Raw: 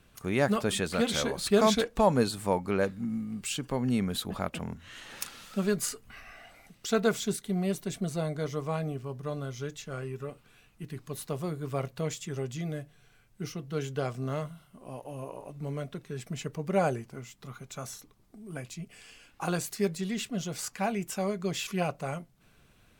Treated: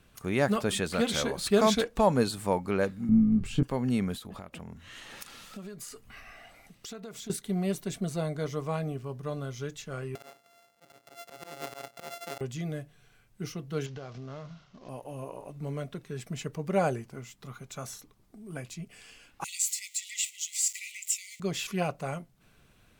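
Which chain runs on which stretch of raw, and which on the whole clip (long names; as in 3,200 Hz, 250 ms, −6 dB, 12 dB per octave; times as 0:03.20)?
0:03.09–0:03.63: spectral tilt −4.5 dB per octave + double-tracking delay 23 ms −6 dB
0:04.14–0:07.30: downward compressor 16 to 1, threshold −38 dBFS + notch filter 1,500 Hz, Q 21
0:10.15–0:12.41: samples sorted by size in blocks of 64 samples + high-pass filter 330 Hz + volume swells 172 ms
0:13.86–0:14.89: variable-slope delta modulation 32 kbit/s + downward compressor, threshold −38 dBFS
0:19.44–0:21.40: converter with a step at zero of −40 dBFS + linear-phase brick-wall high-pass 1,900 Hz + parametric band 7,400 Hz +12.5 dB 0.34 octaves
whole clip: no processing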